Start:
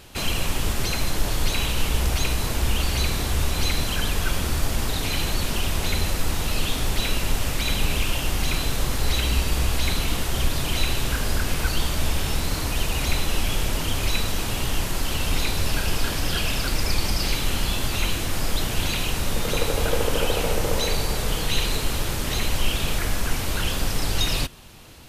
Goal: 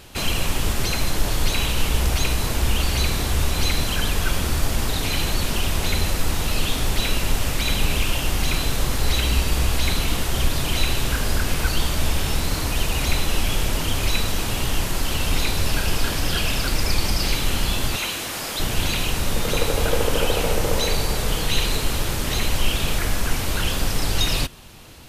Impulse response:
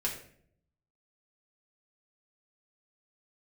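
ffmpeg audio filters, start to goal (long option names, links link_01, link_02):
-filter_complex "[0:a]asettb=1/sr,asplit=3[link_01][link_02][link_03];[link_01]atrim=end=17.964[link_04];[link_02]atrim=start=17.96:end=18.6,asetpts=PTS-STARTPTS,afade=type=in:duration=0.004:curve=qsin,afade=type=out:start_time=0.636:duration=0.004:curve=qsin,highpass=frequency=470:poles=1[link_05];[link_03]atrim=start=18.596[link_06];[link_04][link_05]acrossfade=duration=0.004:curve1=hsin:curve2=qsin[link_07];[link_07][link_06]acrossfade=duration=0.004:curve1=qsin:curve2=hsin,volume=2dB"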